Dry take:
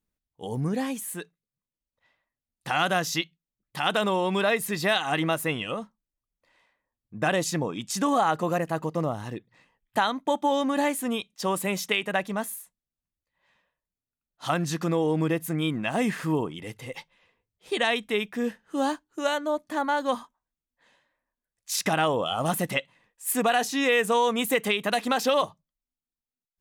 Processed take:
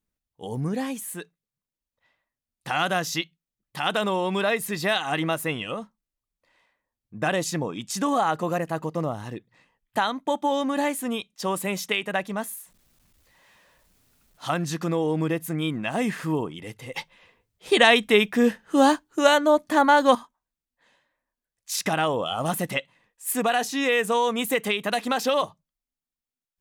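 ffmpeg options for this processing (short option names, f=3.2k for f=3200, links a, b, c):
-filter_complex "[0:a]asettb=1/sr,asplit=3[a][b][c];[a]atrim=end=12.574[d];[b]atrim=start=12.57:end=14.45,asetpts=PTS-STARTPTS,afade=t=in:d=0.004:c=qsin,afade=t=out:st=1.876:d=0.004:c=qsin,aeval=exprs='val(0)+0.5*0.00178*sgn(val(0))':c=same[e];[c]atrim=start=14.446[f];[d][e]acrossfade=d=0.004:c1=hsin:c2=qsin[g];[g][f]acrossfade=d=0.004:c1=qsin:c2=hsin,asplit=3[h][i][j];[h]atrim=end=16.962[k];[i]atrim=start=16.958:end=20.152,asetpts=PTS-STARTPTS,volume=8.5dB[l];[j]atrim=start=20.148[m];[k][l]acrossfade=d=0.004:c1=hsin:c2=hsin[n];[n][m]acrossfade=d=0.004:c1=hsin:c2=hsin"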